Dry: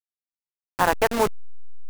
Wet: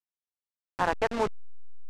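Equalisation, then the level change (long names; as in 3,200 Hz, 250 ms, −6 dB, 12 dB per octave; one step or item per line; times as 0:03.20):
high-frequency loss of the air 90 metres
−6.0 dB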